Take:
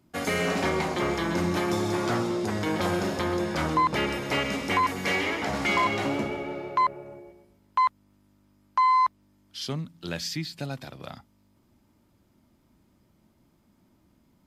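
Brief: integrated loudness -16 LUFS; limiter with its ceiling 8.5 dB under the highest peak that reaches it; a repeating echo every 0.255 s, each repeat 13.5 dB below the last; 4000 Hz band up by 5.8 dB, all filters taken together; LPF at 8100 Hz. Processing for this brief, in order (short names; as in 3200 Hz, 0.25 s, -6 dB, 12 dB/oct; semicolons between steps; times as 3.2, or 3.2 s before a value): LPF 8100 Hz; bell 4000 Hz +8 dB; limiter -21 dBFS; feedback echo 0.255 s, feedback 21%, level -13.5 dB; gain +14 dB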